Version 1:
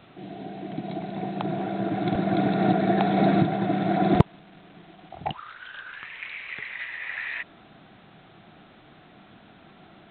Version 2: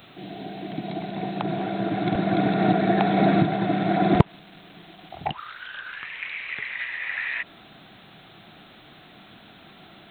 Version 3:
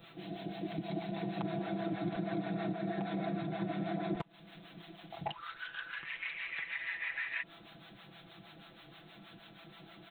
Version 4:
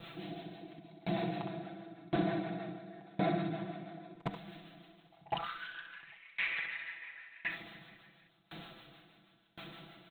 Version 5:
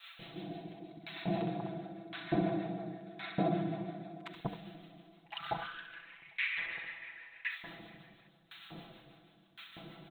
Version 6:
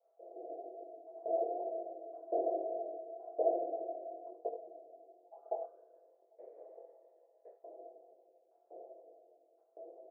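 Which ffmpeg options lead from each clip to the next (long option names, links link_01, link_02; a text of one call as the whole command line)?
ffmpeg -i in.wav -filter_complex "[0:a]aemphasis=mode=production:type=50kf,acrossover=split=3000[link_01][link_02];[link_02]acompressor=threshold=-54dB:ratio=4:attack=1:release=60[link_03];[link_01][link_03]amix=inputs=2:normalize=0,highshelf=frequency=3100:gain=8,volume=1dB" out.wav
ffmpeg -i in.wav -filter_complex "[0:a]acrossover=split=600[link_01][link_02];[link_01]aeval=exprs='val(0)*(1-0.7/2+0.7/2*cos(2*PI*6.3*n/s))':channel_layout=same[link_03];[link_02]aeval=exprs='val(0)*(1-0.7/2-0.7/2*cos(2*PI*6.3*n/s))':channel_layout=same[link_04];[link_03][link_04]amix=inputs=2:normalize=0,acompressor=threshold=-30dB:ratio=16,aecho=1:1:6:0.77,volume=-5.5dB" out.wav
ffmpeg -i in.wav -filter_complex "[0:a]asplit=2[link_01][link_02];[link_02]aecho=0:1:63|136|140|160|862:0.668|0.266|0.112|0.1|0.141[link_03];[link_01][link_03]amix=inputs=2:normalize=0,aeval=exprs='val(0)*pow(10,-28*if(lt(mod(0.94*n/s,1),2*abs(0.94)/1000),1-mod(0.94*n/s,1)/(2*abs(0.94)/1000),(mod(0.94*n/s,1)-2*abs(0.94)/1000)/(1-2*abs(0.94)/1000))/20)':channel_layout=same,volume=6.5dB" out.wav
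ffmpeg -i in.wav -filter_complex "[0:a]acrossover=split=1200[link_01][link_02];[link_01]adelay=190[link_03];[link_03][link_02]amix=inputs=2:normalize=0,volume=1dB" out.wav
ffmpeg -i in.wav -af "flanger=delay=20:depth=4.1:speed=1.1,aeval=exprs='(tanh(35.5*val(0)+0.4)-tanh(0.4))/35.5':channel_layout=same,asuperpass=centerf=520:order=8:qfactor=1.8,volume=13dB" out.wav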